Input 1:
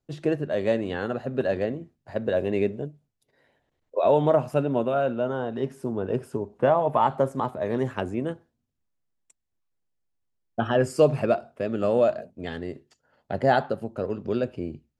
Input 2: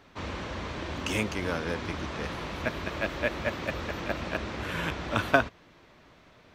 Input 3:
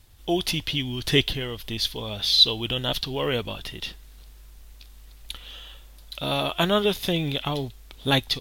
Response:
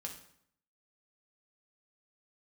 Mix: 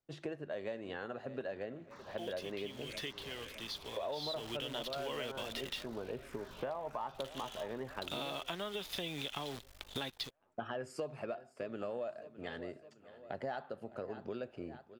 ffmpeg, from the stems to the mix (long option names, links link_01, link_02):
-filter_complex "[0:a]volume=-9dB,asplit=2[link_01][link_02];[link_02]volume=-21dB[link_03];[1:a]acrossover=split=140|3000[link_04][link_05][link_06];[link_05]acompressor=threshold=-36dB:ratio=6[link_07];[link_04][link_07][link_06]amix=inputs=3:normalize=0,asplit=2[link_08][link_09];[link_09]afreqshift=-1.8[link_10];[link_08][link_10]amix=inputs=2:normalize=1,adelay=1750,volume=-16dB,asplit=2[link_11][link_12];[link_12]volume=-5.5dB[link_13];[2:a]acrossover=split=170|540[link_14][link_15][link_16];[link_14]acompressor=threshold=-38dB:ratio=4[link_17];[link_15]acompressor=threshold=-27dB:ratio=4[link_18];[link_16]acompressor=threshold=-27dB:ratio=4[link_19];[link_17][link_18][link_19]amix=inputs=3:normalize=0,acrusher=bits=7:dc=4:mix=0:aa=0.000001,adelay=1900,volume=-3dB,afade=type=in:start_time=4.07:duration=0.3:silence=0.281838[link_20];[link_03][link_13]amix=inputs=2:normalize=0,aecho=0:1:610|1220|1830|2440|3050|3660|4270:1|0.47|0.221|0.104|0.0488|0.0229|0.0108[link_21];[link_01][link_11][link_20][link_21]amix=inputs=4:normalize=0,asplit=2[link_22][link_23];[link_23]highpass=frequency=720:poles=1,volume=8dB,asoftclip=type=tanh:threshold=-14.5dB[link_24];[link_22][link_24]amix=inputs=2:normalize=0,lowpass=frequency=4800:poles=1,volume=-6dB,acompressor=threshold=-38dB:ratio=5"